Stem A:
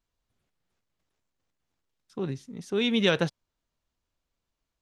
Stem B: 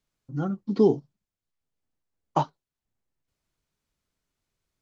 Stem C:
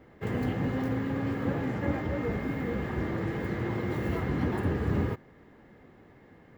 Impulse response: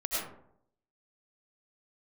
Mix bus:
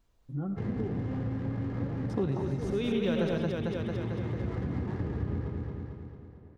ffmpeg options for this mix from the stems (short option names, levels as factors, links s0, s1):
-filter_complex "[0:a]deesser=0.85,equalizer=f=580:t=o:w=2.2:g=5,volume=1.41,asplit=3[s0][s1][s2];[s1]volume=0.299[s3];[s2]volume=0.501[s4];[1:a]lowpass=1500,acompressor=threshold=0.0708:ratio=6,volume=0.355,asplit=3[s5][s6][s7];[s6]volume=0.15[s8];[2:a]adynamicsmooth=sensitivity=7.5:basefreq=810,adelay=350,volume=0.501,asplit=2[s9][s10];[s10]volume=0.422[s11];[s7]apad=whole_len=212373[s12];[s0][s12]sidechaincompress=threshold=0.00355:ratio=8:attack=16:release=893[s13];[3:a]atrim=start_sample=2205[s14];[s3][s8]amix=inputs=2:normalize=0[s15];[s15][s14]afir=irnorm=-1:irlink=0[s16];[s4][s11]amix=inputs=2:normalize=0,aecho=0:1:224|448|672|896|1120|1344|1568|1792:1|0.55|0.303|0.166|0.0915|0.0503|0.0277|0.0152[s17];[s13][s5][s9][s16][s17]amix=inputs=5:normalize=0,lowshelf=f=250:g=9,acompressor=threshold=0.0316:ratio=3"